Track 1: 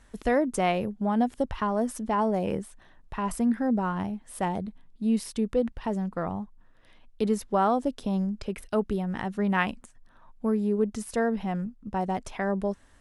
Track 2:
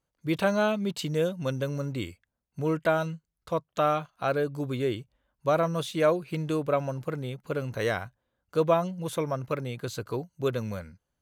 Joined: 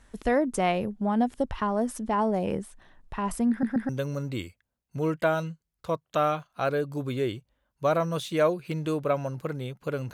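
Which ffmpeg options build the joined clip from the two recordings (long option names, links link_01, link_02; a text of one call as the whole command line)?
ffmpeg -i cue0.wav -i cue1.wav -filter_complex "[0:a]apad=whole_dur=10.13,atrim=end=10.13,asplit=3[link_01][link_02][link_03];[link_01]atrim=end=3.632[link_04];[link_02]atrim=start=3.498:end=3.632[link_05];[link_03]atrim=start=3.498:end=3.632[link_06];[1:a]atrim=start=1.518:end=7.76[link_07];[link_04][link_05]acrossfade=duration=0.004:curve1=hsin:curve2=hsin[link_08];[link_08][link_06]acrossfade=duration=0.004:curve1=hsin:curve2=hsin[link_09];[link_09][link_07]acrossfade=duration=0.004:curve1=hsin:curve2=hsin" out.wav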